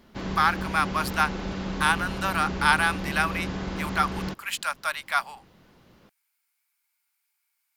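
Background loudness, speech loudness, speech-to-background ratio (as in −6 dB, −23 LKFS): −32.5 LKFS, −26.0 LKFS, 6.5 dB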